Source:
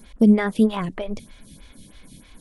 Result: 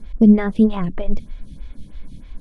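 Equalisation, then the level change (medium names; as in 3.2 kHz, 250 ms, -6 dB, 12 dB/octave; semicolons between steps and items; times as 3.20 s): distance through air 51 m; tilt EQ -1.5 dB/octave; bass shelf 79 Hz +10.5 dB; -1.0 dB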